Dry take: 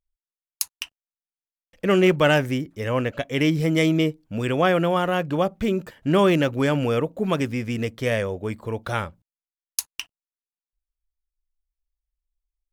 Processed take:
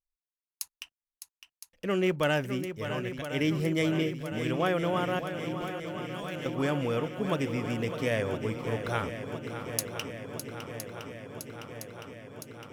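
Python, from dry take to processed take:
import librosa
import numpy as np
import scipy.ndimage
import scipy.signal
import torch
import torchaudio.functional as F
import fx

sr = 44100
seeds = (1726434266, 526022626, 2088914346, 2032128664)

p1 = fx.peak_eq(x, sr, hz=490.0, db=-8.0, octaves=3.0, at=(2.84, 3.25))
p2 = fx.rider(p1, sr, range_db=3, speed_s=2.0)
p3 = fx.tone_stack(p2, sr, knobs='5-5-5', at=(5.19, 6.46))
p4 = p3 + fx.echo_swing(p3, sr, ms=1013, ratio=1.5, feedback_pct=72, wet_db=-10.0, dry=0)
y = p4 * librosa.db_to_amplitude(-8.0)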